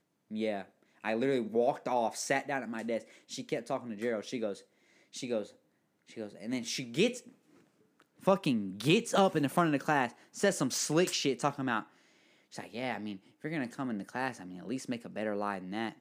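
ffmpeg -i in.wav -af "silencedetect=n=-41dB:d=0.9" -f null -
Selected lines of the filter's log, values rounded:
silence_start: 7.19
silence_end: 8.24 | silence_duration: 1.04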